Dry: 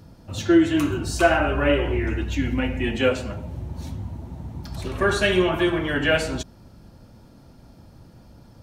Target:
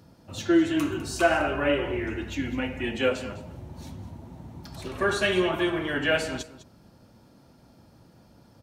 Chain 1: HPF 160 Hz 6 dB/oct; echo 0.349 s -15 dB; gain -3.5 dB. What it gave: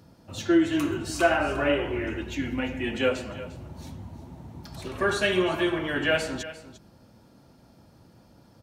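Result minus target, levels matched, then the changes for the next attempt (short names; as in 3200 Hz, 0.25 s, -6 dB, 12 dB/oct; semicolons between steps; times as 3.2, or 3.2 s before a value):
echo 0.146 s late
change: echo 0.203 s -15 dB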